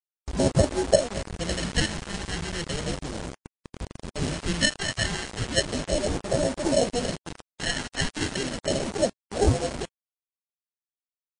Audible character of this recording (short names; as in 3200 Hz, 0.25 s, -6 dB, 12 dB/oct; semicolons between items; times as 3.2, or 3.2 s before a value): aliases and images of a low sample rate 1200 Hz, jitter 0%; phasing stages 2, 0.35 Hz, lowest notch 500–2300 Hz; a quantiser's noise floor 6-bit, dither none; MP3